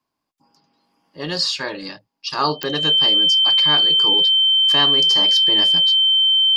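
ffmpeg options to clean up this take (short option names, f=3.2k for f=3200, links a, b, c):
-af "adeclick=t=4,bandreject=f=3.1k:w=30"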